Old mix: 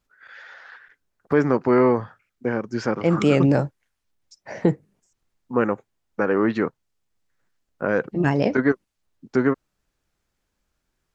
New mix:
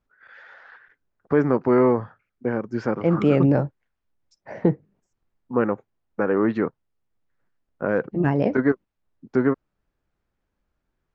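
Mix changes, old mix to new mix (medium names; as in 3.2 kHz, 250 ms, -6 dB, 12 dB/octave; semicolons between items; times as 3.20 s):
second voice: add distance through air 64 m; master: add low-pass 1.5 kHz 6 dB/octave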